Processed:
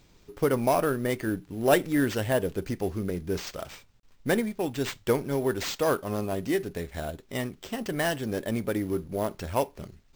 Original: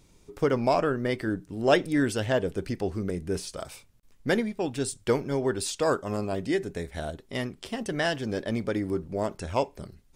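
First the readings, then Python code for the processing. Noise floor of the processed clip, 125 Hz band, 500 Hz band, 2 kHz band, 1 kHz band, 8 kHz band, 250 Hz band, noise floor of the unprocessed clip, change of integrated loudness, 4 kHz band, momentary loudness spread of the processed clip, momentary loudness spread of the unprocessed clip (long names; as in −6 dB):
−59 dBFS, 0.0 dB, 0.0 dB, −0.5 dB, 0.0 dB, −0.5 dB, 0.0 dB, −59 dBFS, 0.0 dB, −1.0 dB, 11 LU, 11 LU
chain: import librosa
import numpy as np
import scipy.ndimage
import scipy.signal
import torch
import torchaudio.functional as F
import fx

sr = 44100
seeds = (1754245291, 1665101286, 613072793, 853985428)

y = fx.cvsd(x, sr, bps=64000)
y = np.repeat(y[::4], 4)[:len(y)]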